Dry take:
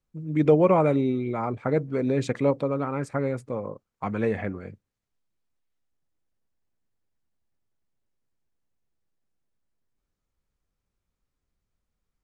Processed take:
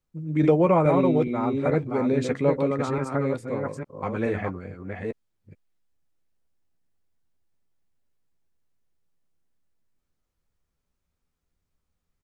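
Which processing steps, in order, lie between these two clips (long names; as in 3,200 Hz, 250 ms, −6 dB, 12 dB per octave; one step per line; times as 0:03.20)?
delay that plays each chunk backwards 426 ms, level −4 dB
double-tracking delay 12 ms −10 dB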